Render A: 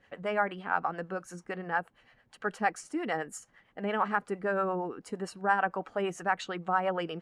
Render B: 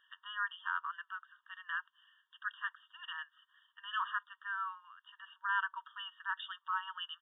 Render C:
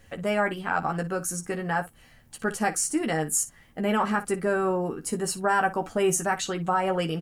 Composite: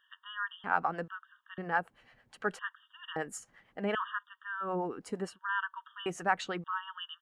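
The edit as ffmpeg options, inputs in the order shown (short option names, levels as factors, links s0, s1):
-filter_complex "[0:a]asplit=5[s0][s1][s2][s3][s4];[1:a]asplit=6[s5][s6][s7][s8][s9][s10];[s5]atrim=end=0.642[s11];[s0]atrim=start=0.638:end=1.082[s12];[s6]atrim=start=1.078:end=1.582[s13];[s1]atrim=start=1.578:end=2.592[s14];[s7]atrim=start=2.588:end=3.162[s15];[s2]atrim=start=3.158:end=3.952[s16];[s8]atrim=start=3.948:end=4.76[s17];[s3]atrim=start=4.6:end=5.39[s18];[s9]atrim=start=5.23:end=6.062[s19];[s4]atrim=start=6.058:end=6.642[s20];[s10]atrim=start=6.638[s21];[s11][s12]acrossfade=d=0.004:c1=hsin:c2=hsin[s22];[s22][s13]acrossfade=d=0.004:c1=hsin:c2=hsin[s23];[s23][s14]acrossfade=d=0.004:c1=hsin:c2=hsin[s24];[s24][s15]acrossfade=d=0.004:c1=hsin:c2=hsin[s25];[s25][s16]acrossfade=d=0.004:c1=hsin:c2=hsin[s26];[s26][s17]acrossfade=d=0.004:c1=hsin:c2=hsin[s27];[s27][s18]acrossfade=d=0.16:c1=tri:c2=tri[s28];[s28][s19]acrossfade=d=0.16:c1=tri:c2=tri[s29];[s29][s20]acrossfade=d=0.004:c1=hsin:c2=hsin[s30];[s30][s21]acrossfade=d=0.004:c1=hsin:c2=hsin"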